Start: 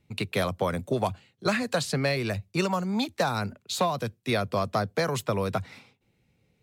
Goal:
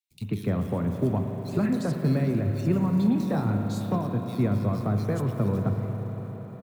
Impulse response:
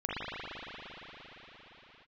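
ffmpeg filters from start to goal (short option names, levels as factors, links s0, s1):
-filter_complex "[0:a]asettb=1/sr,asplit=3[s0][s1][s2];[s0]atrim=end=3.034[s3];[s1]atrim=start=3.03:end=3.85,asetpts=PTS-STARTPTS,afade=t=in:d=0.004:c=qsin,afade=t=out:st=0.816:d=0.004:c=qsin,asplit=2[s4][s5];[s5]adelay=26,volume=0.501[s6];[s4][s6]amix=inputs=2:normalize=0,atrim=end_sample=36162[s7];[s2]atrim=start=3.846[s8];[s3][s7]acrossfade=d=0.004:c1=hsin:c2=qsin[s9];[s9][s8]acrossfade=d=0.004:c1=qsin:c2=hsin,asplit=2[s10][s11];[1:a]atrim=start_sample=2205[s12];[s11][s12]afir=irnorm=-1:irlink=0,volume=0.282[s13];[s10][s13]amix=inputs=2:normalize=0,acrusher=bits=5:mode=log:mix=0:aa=0.000001,firequalizer=gain_entry='entry(250,0);entry(550,-12);entry(2500,-18);entry(13000,-15)':delay=0.05:min_phase=1,acrossover=split=3000[s14][s15];[s14]adelay=110[s16];[s16][s15]amix=inputs=2:normalize=0,volume=1.41"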